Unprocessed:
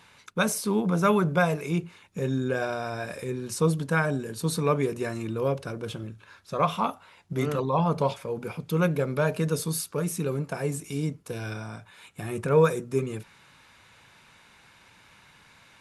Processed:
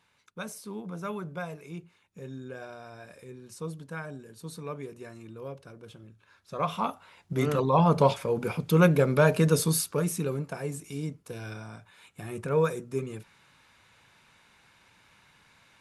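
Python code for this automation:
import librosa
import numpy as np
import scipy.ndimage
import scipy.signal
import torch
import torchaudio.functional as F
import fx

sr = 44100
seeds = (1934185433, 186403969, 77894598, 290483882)

y = fx.gain(x, sr, db=fx.line((6.02, -13.5), (6.79, -3.0), (8.06, 4.0), (9.67, 4.0), (10.63, -5.0)))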